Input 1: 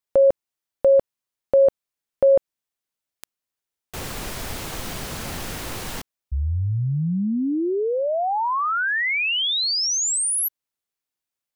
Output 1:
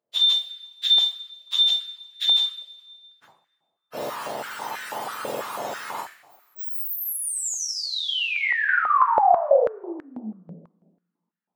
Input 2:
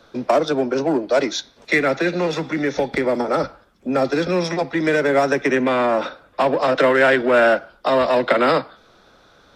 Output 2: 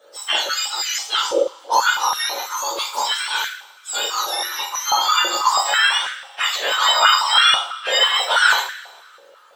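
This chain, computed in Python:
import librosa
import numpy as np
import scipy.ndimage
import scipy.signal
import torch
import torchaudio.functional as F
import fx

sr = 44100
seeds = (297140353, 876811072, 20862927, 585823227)

y = fx.octave_mirror(x, sr, pivot_hz=1400.0)
y = fx.rev_double_slope(y, sr, seeds[0], early_s=0.4, late_s=1.6, knee_db=-18, drr_db=-4.5)
y = fx.filter_held_highpass(y, sr, hz=6.1, low_hz=570.0, high_hz=1700.0)
y = F.gain(torch.from_numpy(y), -5.5).numpy()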